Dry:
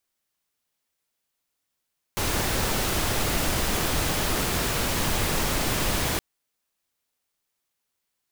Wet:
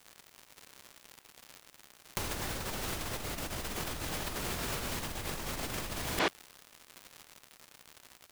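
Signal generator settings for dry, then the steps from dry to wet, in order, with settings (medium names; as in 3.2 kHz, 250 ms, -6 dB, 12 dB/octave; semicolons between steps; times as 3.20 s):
noise pink, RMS -25 dBFS 4.02 s
crackle 170 per s -47 dBFS; speakerphone echo 90 ms, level -9 dB; compressor with a negative ratio -33 dBFS, ratio -0.5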